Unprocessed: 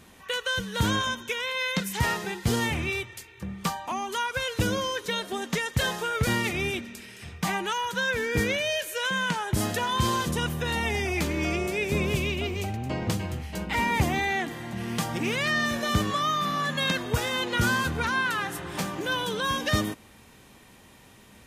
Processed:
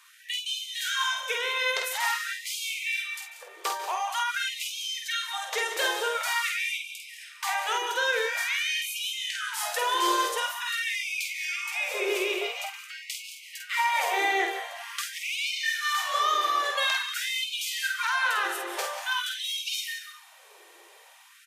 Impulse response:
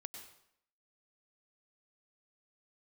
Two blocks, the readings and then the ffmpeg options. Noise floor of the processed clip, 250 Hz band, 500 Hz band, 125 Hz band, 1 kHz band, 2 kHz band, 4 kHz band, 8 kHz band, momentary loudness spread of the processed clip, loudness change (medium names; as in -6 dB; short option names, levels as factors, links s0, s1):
-54 dBFS, -15.5 dB, -4.0 dB, under -40 dB, +0.5 dB, +0.5 dB, +2.0 dB, +2.0 dB, 10 LU, -0.5 dB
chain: -filter_complex "[0:a]aecho=1:1:188:0.237,asplit=2[s0][s1];[1:a]atrim=start_sample=2205,adelay=49[s2];[s1][s2]afir=irnorm=-1:irlink=0,volume=1.12[s3];[s0][s3]amix=inputs=2:normalize=0,afftfilt=real='re*gte(b*sr/1024,310*pow(2200/310,0.5+0.5*sin(2*PI*0.47*pts/sr)))':imag='im*gte(b*sr/1024,310*pow(2200/310,0.5+0.5*sin(2*PI*0.47*pts/sr)))':win_size=1024:overlap=0.75"